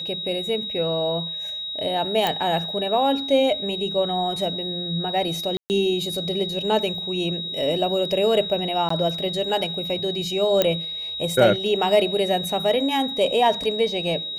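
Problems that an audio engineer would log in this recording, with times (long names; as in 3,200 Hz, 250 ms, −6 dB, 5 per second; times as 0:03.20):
whistle 3,800 Hz −28 dBFS
0:02.27: click −7 dBFS
0:05.57–0:05.70: drop-out 129 ms
0:08.89–0:08.90: drop-out 14 ms
0:10.62: click −4 dBFS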